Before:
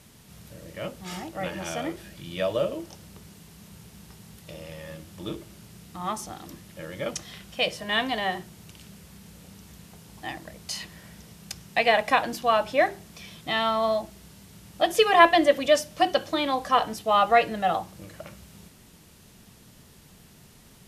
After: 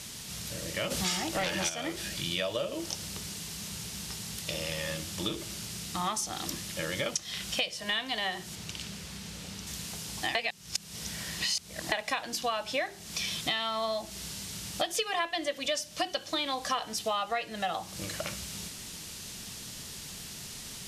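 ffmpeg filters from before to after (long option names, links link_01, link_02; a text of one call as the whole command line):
ffmpeg -i in.wav -filter_complex "[0:a]asplit=3[link_01][link_02][link_03];[link_01]afade=type=out:start_time=0.9:duration=0.02[link_04];[link_02]aeval=exprs='0.126*sin(PI/2*2.24*val(0)/0.126)':channel_layout=same,afade=type=in:start_time=0.9:duration=0.02,afade=type=out:start_time=1.68:duration=0.02[link_05];[link_03]afade=type=in:start_time=1.68:duration=0.02[link_06];[link_04][link_05][link_06]amix=inputs=3:normalize=0,asettb=1/sr,asplit=3[link_07][link_08][link_09];[link_07]atrim=end=8.554[link_10];[link_08]atrim=start=8.55:end=9.67,asetpts=PTS-STARTPTS,afade=type=in:duration=0.004:curve=qsin,afade=type=out:start_time=1.116:duration=0.004:curve=qsin,highshelf=frequency=6100:gain=-9.5[link_11];[link_09]atrim=start=9.666[link_12];[link_10][link_11]acrossfade=duration=0.004:curve1=hsin:curve2=qsin[link_13];[link_13][link_12]acrossfade=duration=0.004:curve1=qsin:curve2=hsin,asplit=3[link_14][link_15][link_16];[link_14]atrim=end=10.352[link_17];[link_15]atrim=start=10.348:end=11.922,asetpts=PTS-STARTPTS,areverse[link_18];[link_16]atrim=start=11.918[link_19];[link_17][link_18]acrossfade=duration=0.004:curve1=hsin:curve2=hsin[link_20];[link_20][link_19]acrossfade=duration=0.004:curve1=hsin:curve2=hsin,equalizer=frequency=5600:width=0.39:gain=13,acompressor=threshold=-32dB:ratio=10,volume=3.5dB" out.wav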